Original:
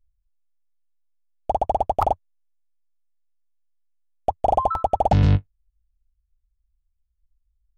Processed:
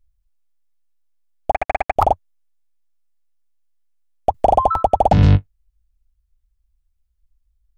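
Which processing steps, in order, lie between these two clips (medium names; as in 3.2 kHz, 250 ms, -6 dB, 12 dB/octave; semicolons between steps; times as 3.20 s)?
1.51–1.96 s: power-law waveshaper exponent 3; 4.34–5.18 s: three bands compressed up and down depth 40%; trim +5 dB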